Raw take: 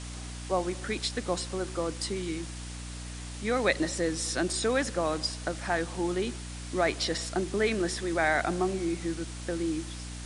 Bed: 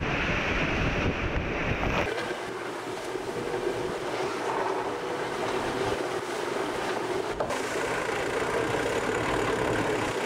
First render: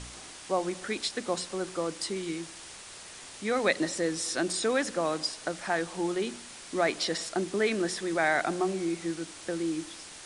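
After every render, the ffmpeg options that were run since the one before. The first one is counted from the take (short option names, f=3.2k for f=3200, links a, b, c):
-af "bandreject=f=60:t=h:w=4,bandreject=f=120:t=h:w=4,bandreject=f=180:t=h:w=4,bandreject=f=240:t=h:w=4,bandreject=f=300:t=h:w=4"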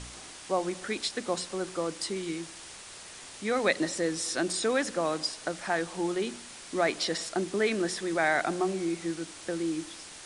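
-af anull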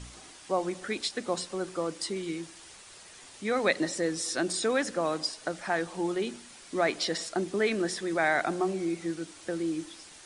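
-af "afftdn=nr=6:nf=-46"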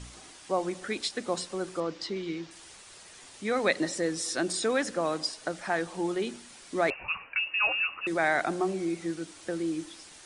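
-filter_complex "[0:a]asettb=1/sr,asplit=3[a][b][c];[a]atrim=end=1.804[d];[b]atrim=start=1.8:end=2.51,asetpts=PTS-STARTPTS,afade=t=in:d=0.004:c=qsin,afade=t=out:st=0.706:d=0.004:c=qsin,lowpass=f=5.5k:w=0.5412,lowpass=f=5.5k:w=1.3066[e];[c]atrim=start=2.506[f];[d][e]acrossfade=d=0.004:c1=hsin:c2=qsin[g];[g][f]acrossfade=d=0.004:c1=qsin:c2=hsin,asettb=1/sr,asplit=3[h][i][j];[h]atrim=end=6.904[k];[i]atrim=start=6.9:end=8.07,asetpts=PTS-STARTPTS,afade=t=in:d=0.004:c=qsin,afade=t=out:st=1.166:d=0.004:c=qsin,lowpass=f=2.6k:t=q:w=0.5098,lowpass=f=2.6k:t=q:w=0.6013,lowpass=f=2.6k:t=q:w=0.9,lowpass=f=2.6k:t=q:w=2.563,afreqshift=-3000[l];[j]atrim=start=8.066[m];[k][l]acrossfade=d=0.004:c1=hsin:c2=qsin[n];[n][m]acrossfade=d=0.004:c1=qsin:c2=hsin"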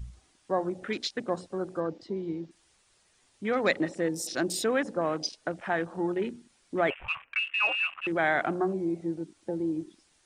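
-af "afwtdn=0.0112,lowshelf=f=110:g=8.5"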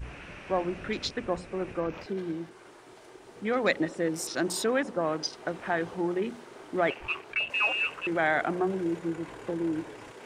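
-filter_complex "[1:a]volume=-17.5dB[a];[0:a][a]amix=inputs=2:normalize=0"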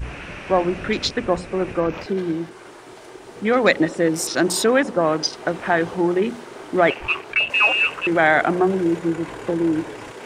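-af "volume=10dB,alimiter=limit=-1dB:level=0:latency=1"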